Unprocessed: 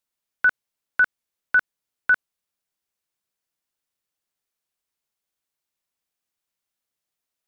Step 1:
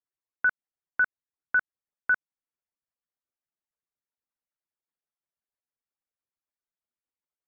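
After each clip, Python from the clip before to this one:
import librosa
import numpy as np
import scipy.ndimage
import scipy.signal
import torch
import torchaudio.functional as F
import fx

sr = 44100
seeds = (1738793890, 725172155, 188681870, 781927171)

y = fx.hpss_only(x, sr, part='percussive')
y = scipy.signal.sosfilt(scipy.signal.butter(4, 2000.0, 'lowpass', fs=sr, output='sos'), y)
y = y * librosa.db_to_amplitude(-5.0)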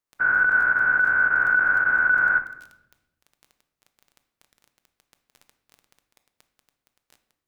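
y = fx.spec_dilate(x, sr, span_ms=480)
y = fx.dmg_crackle(y, sr, seeds[0], per_s=13.0, level_db=-34.0)
y = fx.room_shoebox(y, sr, seeds[1], volume_m3=320.0, walls='mixed', distance_m=0.4)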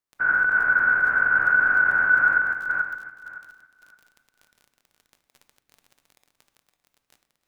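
y = fx.reverse_delay_fb(x, sr, ms=282, feedback_pct=42, wet_db=-3.5)
y = y * librosa.db_to_amplitude(-1.5)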